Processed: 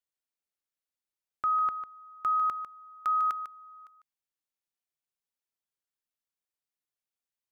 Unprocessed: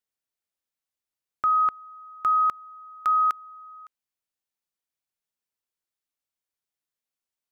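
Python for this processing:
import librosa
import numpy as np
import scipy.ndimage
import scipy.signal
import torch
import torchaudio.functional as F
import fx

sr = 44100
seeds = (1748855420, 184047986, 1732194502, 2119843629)

y = x + 10.0 ** (-10.0 / 20.0) * np.pad(x, (int(149 * sr / 1000.0), 0))[:len(x)]
y = F.gain(torch.from_numpy(y), -5.5).numpy()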